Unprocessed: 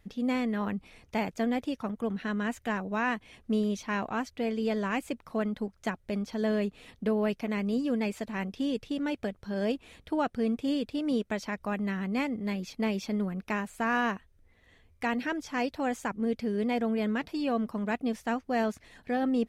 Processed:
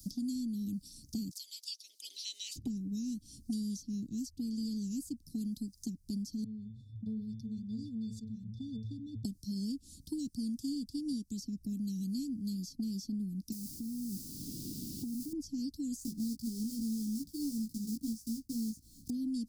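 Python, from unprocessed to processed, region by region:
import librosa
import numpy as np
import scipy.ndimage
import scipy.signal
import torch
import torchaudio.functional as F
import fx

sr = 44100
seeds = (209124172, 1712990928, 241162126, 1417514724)

y = fx.spec_clip(x, sr, under_db=27, at=(1.3, 2.55), fade=0.02)
y = fx.bessel_highpass(y, sr, hz=1600.0, order=6, at=(1.3, 2.55), fade=0.02)
y = fx.peak_eq(y, sr, hz=4000.0, db=7.0, octaves=2.4, at=(1.3, 2.55), fade=0.02)
y = fx.chain(y, sr, fx.low_shelf_res(hz=160.0, db=11.0, q=3.0),
    fx.octave_resonator(note='A', decay_s=0.24),
    fx.sustainer(db_per_s=81.0), at=(6.44, 9.25))
y = fx.chain(y, sr, fx.savgol(points=41),
    fx.quant_dither(seeds[0], bits=6, dither='triangular'),
    fx.level_steps(step_db=13), at=(13.52, 15.33))
y = fx.chain(y, sr, fx.block_float(bits=3),
    fx.doubler(ms=18.0, db=-3.0), at=(15.99, 19.11))
y = scipy.signal.sosfilt(scipy.signal.cheby1(4, 1.0, [290.0, 4800.0], 'bandstop', fs=sr, output='sos'), y)
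y = fx.band_squash(y, sr, depth_pct=100)
y = y * 10.0 ** (-4.5 / 20.0)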